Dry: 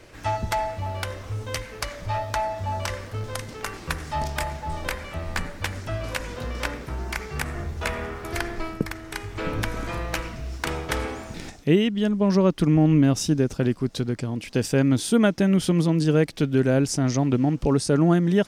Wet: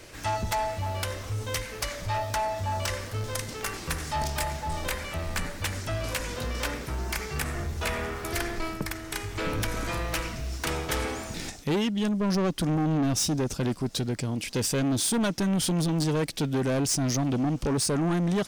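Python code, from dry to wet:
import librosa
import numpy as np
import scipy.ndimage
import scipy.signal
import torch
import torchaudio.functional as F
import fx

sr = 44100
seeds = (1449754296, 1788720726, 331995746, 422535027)

y = fx.high_shelf(x, sr, hz=3700.0, db=9.5)
y = 10.0 ** (-22.0 / 20.0) * np.tanh(y / 10.0 ** (-22.0 / 20.0))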